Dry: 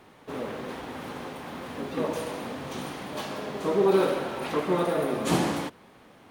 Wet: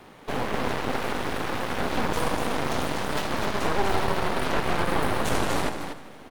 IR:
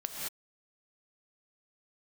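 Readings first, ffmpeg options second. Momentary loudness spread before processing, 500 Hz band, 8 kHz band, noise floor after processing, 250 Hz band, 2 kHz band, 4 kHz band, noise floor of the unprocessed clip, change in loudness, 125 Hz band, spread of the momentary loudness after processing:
14 LU, -2.0 dB, +4.5 dB, -45 dBFS, -0.5 dB, +7.5 dB, +5.5 dB, -54 dBFS, +1.5 dB, +3.5 dB, 4 LU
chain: -filter_complex "[0:a]acrossover=split=370|1200[s0][s1][s2];[s0]acompressor=threshold=0.01:ratio=4[s3];[s1]acompressor=threshold=0.0141:ratio=4[s4];[s2]acompressor=threshold=0.00562:ratio=4[s5];[s3][s4][s5]amix=inputs=3:normalize=0,aeval=exprs='clip(val(0),-1,0.0282)':c=same,asplit=2[s6][s7];[s7]aecho=0:1:244:0.596[s8];[s6][s8]amix=inputs=2:normalize=0,aeval=exprs='0.126*(cos(1*acos(clip(val(0)/0.126,-1,1)))-cos(1*PI/2))+0.0631*(cos(6*acos(clip(val(0)/0.126,-1,1)))-cos(6*PI/2))':c=same,asplit=2[s9][s10];[s10]aecho=0:1:159|318|477|636|795:0.133|0.0733|0.0403|0.0222|0.0122[s11];[s9][s11]amix=inputs=2:normalize=0,volume=1.68"

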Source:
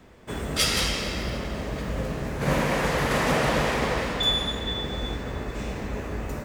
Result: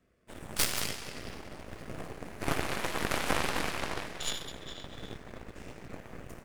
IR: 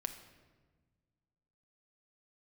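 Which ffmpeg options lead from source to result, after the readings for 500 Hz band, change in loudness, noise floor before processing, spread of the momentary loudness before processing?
-11.5 dB, -8.5 dB, -36 dBFS, 10 LU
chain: -af "superequalizer=9b=0.251:13b=0.708:16b=1.78,aeval=exprs='0.531*(cos(1*acos(clip(val(0)/0.531,-1,1)))-cos(1*PI/2))+0.0133*(cos(3*acos(clip(val(0)/0.531,-1,1)))-cos(3*PI/2))+0.15*(cos(6*acos(clip(val(0)/0.531,-1,1)))-cos(6*PI/2))+0.0841*(cos(7*acos(clip(val(0)/0.531,-1,1)))-cos(7*PI/2))+0.0211*(cos(8*acos(clip(val(0)/0.531,-1,1)))-cos(8*PI/2))':c=same,volume=0.596"

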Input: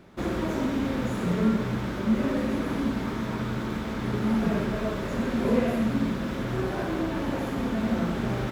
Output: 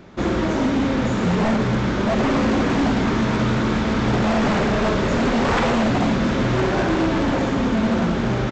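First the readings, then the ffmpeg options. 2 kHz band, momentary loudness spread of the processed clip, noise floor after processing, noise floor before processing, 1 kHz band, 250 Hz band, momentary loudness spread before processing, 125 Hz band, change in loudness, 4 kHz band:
+10.5 dB, 2 LU, -22 dBFS, -32 dBFS, +11.0 dB, +6.5 dB, 6 LU, +8.0 dB, +8.0 dB, +11.0 dB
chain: -af "dynaudnorm=f=550:g=7:m=1.5,aresample=16000,aeval=exprs='0.0841*(abs(mod(val(0)/0.0841+3,4)-2)-1)':c=same,aresample=44100,volume=2.51"

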